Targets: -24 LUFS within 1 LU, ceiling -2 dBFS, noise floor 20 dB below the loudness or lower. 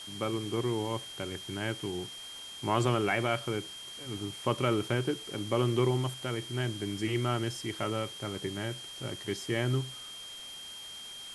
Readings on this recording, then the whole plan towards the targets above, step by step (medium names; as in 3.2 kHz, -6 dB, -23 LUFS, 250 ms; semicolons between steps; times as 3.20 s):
steady tone 3.2 kHz; tone level -43 dBFS; noise floor -45 dBFS; noise floor target -53 dBFS; loudness -33.0 LUFS; peak level -12.5 dBFS; loudness target -24.0 LUFS
-> band-stop 3.2 kHz, Q 30; noise reduction 8 dB, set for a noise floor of -45 dBFS; trim +9 dB